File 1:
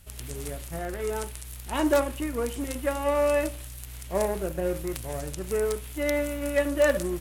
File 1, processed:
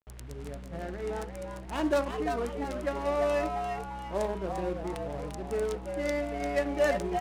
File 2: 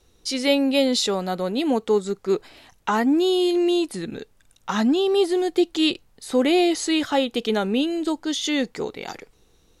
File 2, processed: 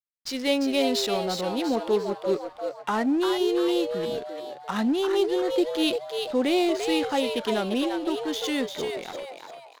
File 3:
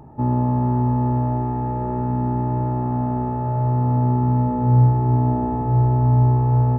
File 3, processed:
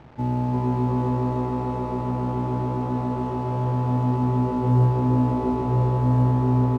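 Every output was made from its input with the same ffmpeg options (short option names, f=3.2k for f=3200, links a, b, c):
-filter_complex "[0:a]acrusher=bits=6:mix=0:aa=0.000001,adynamicsmooth=sensitivity=5.5:basefreq=1.3k,asplit=6[a][b][c][d][e][f];[b]adelay=346,afreqshift=130,volume=-6dB[g];[c]adelay=692,afreqshift=260,volume=-13.7dB[h];[d]adelay=1038,afreqshift=390,volume=-21.5dB[i];[e]adelay=1384,afreqshift=520,volume=-29.2dB[j];[f]adelay=1730,afreqshift=650,volume=-37dB[k];[a][g][h][i][j][k]amix=inputs=6:normalize=0,volume=-4.5dB"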